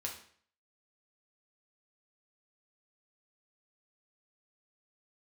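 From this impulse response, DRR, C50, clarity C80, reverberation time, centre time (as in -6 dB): -1.0 dB, 7.5 dB, 11.0 dB, 0.55 s, 24 ms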